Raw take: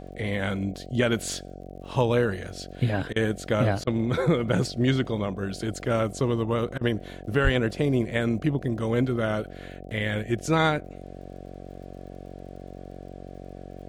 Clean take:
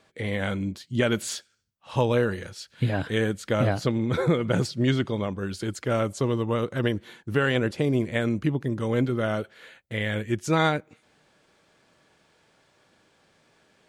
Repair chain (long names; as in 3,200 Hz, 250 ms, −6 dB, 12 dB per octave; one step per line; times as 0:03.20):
click removal
hum removal 46.2 Hz, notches 16
0:07.43–0:07.55: high-pass filter 140 Hz 24 dB per octave
repair the gap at 0:03.13/0:03.84/0:06.78, 30 ms